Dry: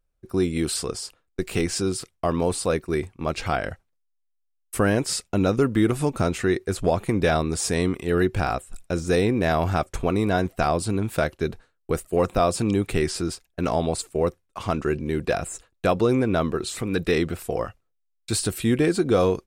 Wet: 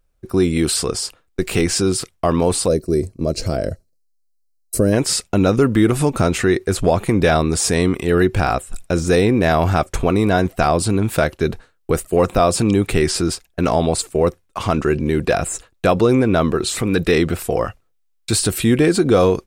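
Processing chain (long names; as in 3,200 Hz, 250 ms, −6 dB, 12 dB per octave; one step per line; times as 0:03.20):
gain on a spectral selection 0:02.68–0:04.93, 680–3,900 Hz −16 dB
in parallel at +1 dB: brickwall limiter −21 dBFS, peak gain reduction 11 dB
on the sum: level +3 dB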